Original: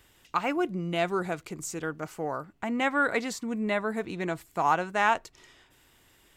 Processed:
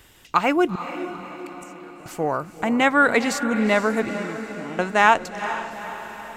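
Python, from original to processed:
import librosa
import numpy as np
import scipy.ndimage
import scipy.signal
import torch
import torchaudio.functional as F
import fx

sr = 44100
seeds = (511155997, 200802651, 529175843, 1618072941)

y = fx.gate_flip(x, sr, shuts_db=-27.0, range_db=-25, at=(0.75, 2.06))
y = fx.formant_cascade(y, sr, vowel='i', at=(4.09, 4.79))
y = fx.echo_diffused(y, sr, ms=454, feedback_pct=55, wet_db=-11)
y = y * 10.0 ** (8.5 / 20.0)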